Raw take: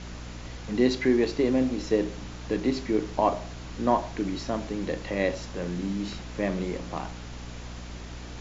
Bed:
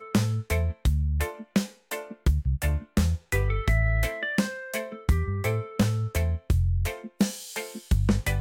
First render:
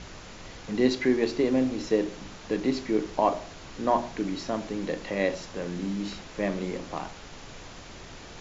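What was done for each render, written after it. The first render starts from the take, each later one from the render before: hum notches 60/120/180/240/300/360 Hz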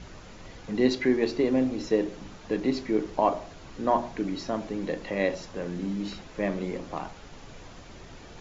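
noise reduction 6 dB, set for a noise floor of -45 dBFS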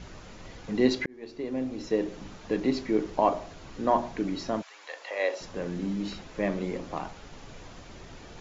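1.06–2.24 s: fade in; 4.61–5.40 s: high-pass 1.2 kHz -> 360 Hz 24 dB/octave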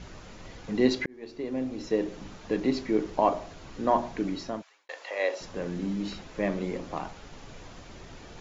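4.29–4.89 s: fade out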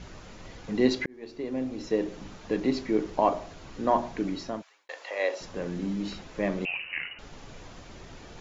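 6.65–7.19 s: frequency inversion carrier 2.9 kHz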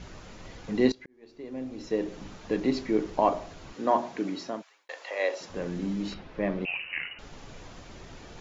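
0.92–2.22 s: fade in, from -22.5 dB; 3.73–5.50 s: high-pass 200 Hz; 6.14–6.68 s: distance through air 200 m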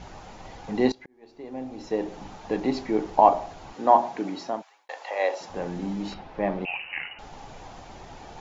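peaking EQ 810 Hz +13 dB 0.52 oct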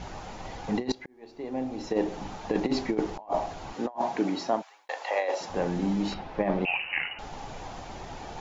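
compressor with a negative ratio -26 dBFS, ratio -0.5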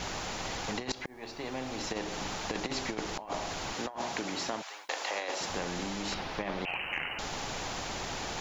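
compression 3:1, threshold -29 dBFS, peak gain reduction 7 dB; spectrum-flattening compressor 2:1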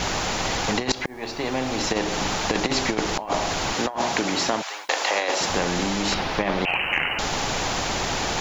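trim +11.5 dB

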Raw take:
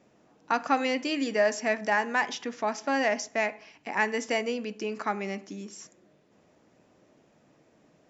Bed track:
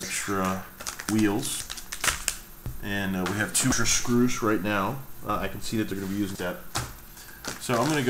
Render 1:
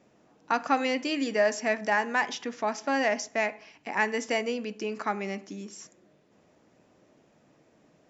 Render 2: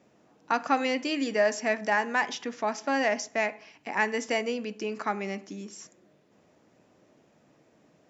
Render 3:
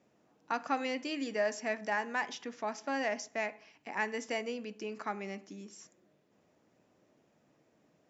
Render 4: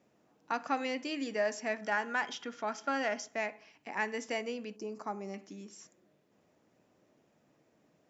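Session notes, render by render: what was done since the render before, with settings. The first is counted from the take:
no audible change
high-pass 56 Hz
trim -7.5 dB
1.82–3.33 s: small resonant body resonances 1.4/3.2 kHz, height 15 dB; 4.76–5.34 s: high-order bell 2.4 kHz -12.5 dB

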